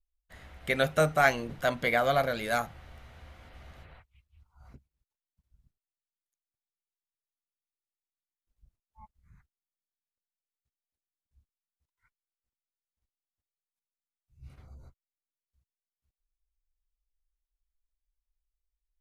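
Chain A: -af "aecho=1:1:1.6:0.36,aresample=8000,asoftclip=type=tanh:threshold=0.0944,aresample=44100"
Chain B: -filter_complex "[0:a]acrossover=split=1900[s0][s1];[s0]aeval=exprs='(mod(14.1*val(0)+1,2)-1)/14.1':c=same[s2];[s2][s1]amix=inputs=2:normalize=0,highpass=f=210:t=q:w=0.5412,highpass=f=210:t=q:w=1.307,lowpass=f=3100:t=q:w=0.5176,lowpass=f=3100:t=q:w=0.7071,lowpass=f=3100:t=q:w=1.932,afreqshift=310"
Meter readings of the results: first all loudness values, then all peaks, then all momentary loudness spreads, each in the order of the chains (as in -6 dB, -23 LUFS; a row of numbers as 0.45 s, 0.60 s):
-30.0 LUFS, -31.5 LUFS; -18.5 dBFS, -16.0 dBFS; 7 LU, 6 LU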